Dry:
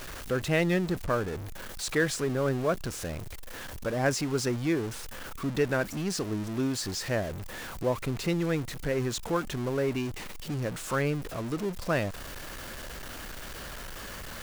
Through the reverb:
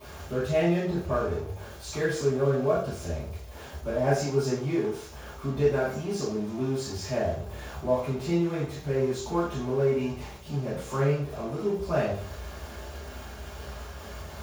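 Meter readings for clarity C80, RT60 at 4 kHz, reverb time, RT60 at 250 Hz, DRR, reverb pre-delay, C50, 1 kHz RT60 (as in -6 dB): 6.0 dB, 0.40 s, 0.50 s, 0.50 s, -17.5 dB, 3 ms, 2.0 dB, 0.50 s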